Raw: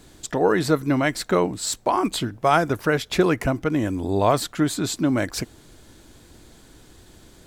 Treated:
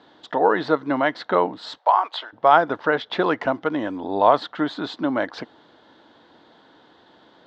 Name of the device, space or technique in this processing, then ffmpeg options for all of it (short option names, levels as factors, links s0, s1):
phone earpiece: -filter_complex "[0:a]aemphasis=mode=reproduction:type=50kf,asettb=1/sr,asplit=3[s0][s1][s2];[s0]atrim=end=1.784[s3];[s1]atrim=start=1.78:end=2.33,asetpts=PTS-STARTPTS,afade=t=in:d=0.004:c=qsin,afade=t=out:st=0.546:d=0.004:c=qsin,highpass=f=590:w=0.5412,highpass=f=590:w=1.3066[s4];[s2]atrim=start=2.326[s5];[s3][s4]acrossfade=d=0.004:c1=hsin:c2=qsin[s6];[s6][s5]acrossfade=d=0.004:c1=qsin:c2=hsin,asettb=1/sr,asplit=3[s7][s8][s9];[s7]atrim=end=3.224[s10];[s8]atrim=start=3.22:end=3.98,asetpts=PTS-STARTPTS,afade=t=in:d=0.004:c=qsin,afade=t=out:st=0.756:d=0.004:c=qsin,equalizer=f=8200:w=0.52:g=5.5[s11];[s9]atrim=start=3.976[s12];[s10][s11]acrossfade=d=0.004:c1=hsin:c2=qsin[s13];[s13][s12]acrossfade=d=0.004:c1=qsin:c2=hsin,highpass=350,equalizer=f=380:t=q:w=4:g=-6,equalizer=f=900:t=q:w=4:g=5,equalizer=f=2400:t=q:w=4:g=-10,equalizer=f=3500:t=q:w=4:g=3,lowpass=f=3900:w=0.5412,lowpass=f=3900:w=1.3066,volume=1.5"